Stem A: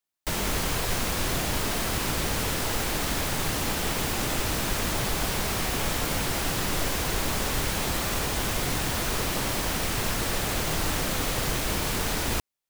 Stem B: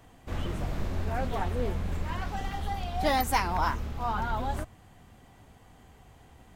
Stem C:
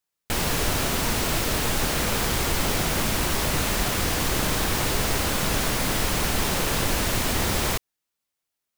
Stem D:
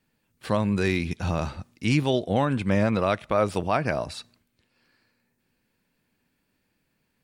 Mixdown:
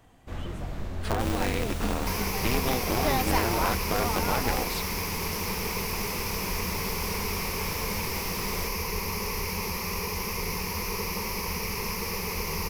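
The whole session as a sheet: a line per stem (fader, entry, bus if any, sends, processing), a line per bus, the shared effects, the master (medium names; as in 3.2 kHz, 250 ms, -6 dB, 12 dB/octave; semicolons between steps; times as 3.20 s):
-6.5 dB, 1.80 s, no send, rippled EQ curve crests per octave 0.83, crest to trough 16 dB
-2.5 dB, 0.00 s, no send, none
-14.5 dB, 0.90 s, no send, none
+0.5 dB, 0.60 s, no send, compression, threshold -26 dBFS, peak gain reduction 8.5 dB; polarity switched at an audio rate 120 Hz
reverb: none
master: none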